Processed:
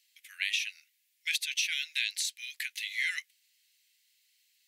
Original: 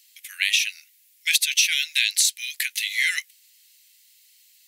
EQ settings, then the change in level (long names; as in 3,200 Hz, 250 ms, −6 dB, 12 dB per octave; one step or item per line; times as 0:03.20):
high-shelf EQ 5,300 Hz −10.5 dB
−7.5 dB